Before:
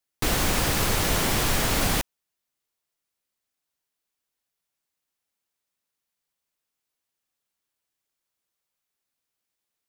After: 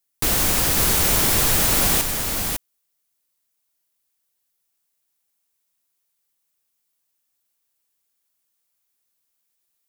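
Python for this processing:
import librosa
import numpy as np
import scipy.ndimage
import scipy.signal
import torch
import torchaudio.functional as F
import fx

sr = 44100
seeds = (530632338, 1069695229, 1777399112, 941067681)

p1 = fx.high_shelf(x, sr, hz=6800.0, db=11.5)
y = p1 + fx.echo_single(p1, sr, ms=553, db=-5.0, dry=0)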